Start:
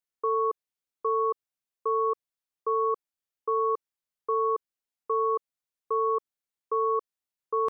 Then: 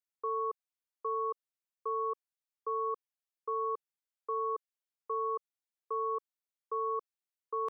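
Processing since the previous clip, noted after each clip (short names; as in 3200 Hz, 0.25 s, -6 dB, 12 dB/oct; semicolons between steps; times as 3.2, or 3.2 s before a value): Bessel high-pass 410 Hz; gain -6.5 dB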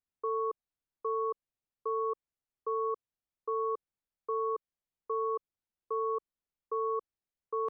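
tilt -3 dB/oct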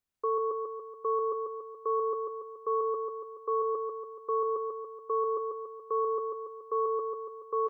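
feedback echo 0.142 s, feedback 56%, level -4 dB; gain +3.5 dB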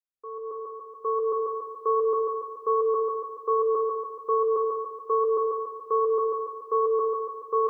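opening faded in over 1.57 s; on a send at -1.5 dB: reverb, pre-delay 3 ms; on the sum: gain +5 dB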